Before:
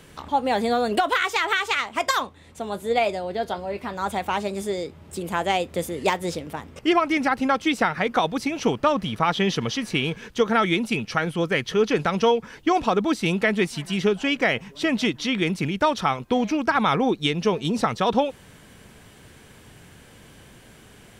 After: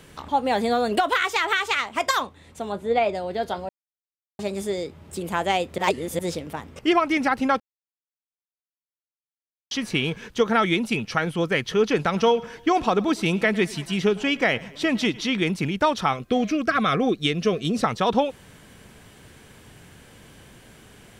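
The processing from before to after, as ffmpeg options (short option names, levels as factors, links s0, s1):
-filter_complex "[0:a]asettb=1/sr,asplit=3[s0][s1][s2];[s0]atrim=end=2.724[s3];[s1]atrim=start=2.72:end=3.15,asetpts=PTS-STARTPTS,afade=t=in:d=0.004:c=qsin,afade=t=out:st=0.426:d=0.004:c=qsin,aemphasis=mode=reproduction:type=75fm[s4];[s2]atrim=start=3.146[s5];[s3][s4]acrossfade=d=0.004:c1=hsin:c2=qsin[s6];[s6][s5]acrossfade=d=0.004:c1=qsin:c2=hsin,asettb=1/sr,asplit=3[s7][s8][s9];[s7]atrim=end=12.034[s10];[s8]atrim=start=12.03:end=15.37,asetpts=PTS-STARTPTS,afade=t=in:d=0.004:c=qsin,afade=t=out:st=3.336:d=0.004:c=qsin,aecho=1:1:105|210|315:0.0891|0.0428|0.0205,atrim=end_sample=147294[s11];[s9]atrim=start=15.366[s12];[s10][s11]acrossfade=d=0.004:c1=hsin:c2=qsin[s13];[s13][s12]acrossfade=d=0.004:c1=qsin:c2=hsin,asettb=1/sr,asplit=3[s14][s15][s16];[s14]atrim=end=16.134[s17];[s15]atrim=start=16.13:end=17.84,asetpts=PTS-STARTPTS,afade=t=in:d=0.004:c=qsin,afade=t=out:st=1.706:d=0.004:c=qsin,asuperstop=centerf=900:order=8:qfactor=3.5[s18];[s16]atrim=start=17.836[s19];[s17][s18]acrossfade=d=0.004:c1=hsin:c2=qsin[s20];[s20][s19]acrossfade=d=0.004:c1=qsin:c2=hsin,asplit=7[s21][s22][s23][s24][s25][s26][s27];[s21]atrim=end=3.69,asetpts=PTS-STARTPTS,afade=t=out:st=3.686:d=0.004:c=hsin[s28];[s22]atrim=start=3.69:end=4.39,asetpts=PTS-STARTPTS,volume=0[s29];[s23]atrim=start=4.39:end=5.782,asetpts=PTS-STARTPTS,afade=t=in:d=0.004:c=hsin[s30];[s24]atrim=start=5.778:end=6.192,asetpts=PTS-STARTPTS,areverse[s31];[s25]atrim=start=6.188:end=7.6,asetpts=PTS-STARTPTS,afade=t=out:st=1.408:d=0.004:c=hsin[s32];[s26]atrim=start=7.6:end=9.71,asetpts=PTS-STARTPTS,volume=0[s33];[s27]atrim=start=9.71,asetpts=PTS-STARTPTS,afade=t=in:d=0.004:c=hsin[s34];[s28][s29][s30]concat=n=3:v=0:a=1[s35];[s35][s31]acrossfade=d=0.004:c1=hsin:c2=hsin[s36];[s32][s33][s34]concat=n=3:v=0:a=1[s37];[s36][s37]acrossfade=d=0.004:c1=hsin:c2=hsin"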